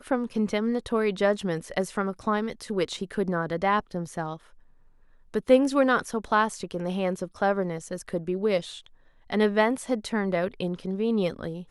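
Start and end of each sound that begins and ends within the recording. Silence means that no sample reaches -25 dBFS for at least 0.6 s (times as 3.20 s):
5.34–8.60 s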